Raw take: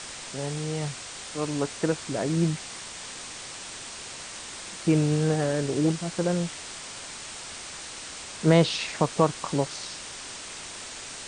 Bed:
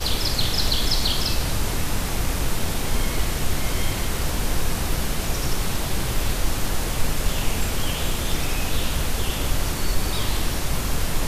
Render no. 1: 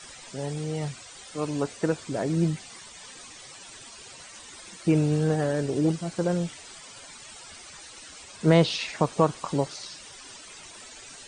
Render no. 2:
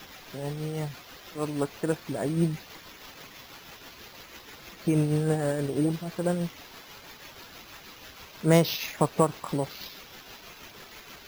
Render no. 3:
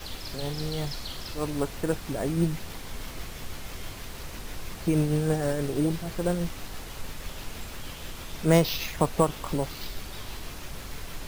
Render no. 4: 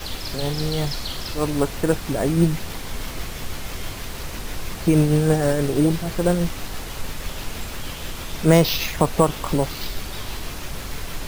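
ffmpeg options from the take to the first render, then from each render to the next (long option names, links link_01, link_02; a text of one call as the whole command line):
ffmpeg -i in.wav -af "afftdn=noise_reduction=13:noise_floor=-40" out.wav
ffmpeg -i in.wav -af "acrusher=samples=5:mix=1:aa=0.000001,tremolo=f=6.2:d=0.38" out.wav
ffmpeg -i in.wav -i bed.wav -filter_complex "[1:a]volume=-15.5dB[link_01];[0:a][link_01]amix=inputs=2:normalize=0" out.wav
ffmpeg -i in.wav -af "volume=7.5dB,alimiter=limit=-3dB:level=0:latency=1" out.wav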